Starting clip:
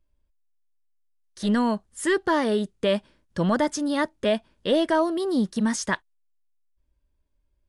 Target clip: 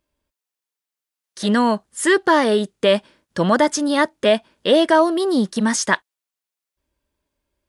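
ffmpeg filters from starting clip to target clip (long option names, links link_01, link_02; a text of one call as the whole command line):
ffmpeg -i in.wav -af "highpass=frequency=300:poles=1,volume=8.5dB" out.wav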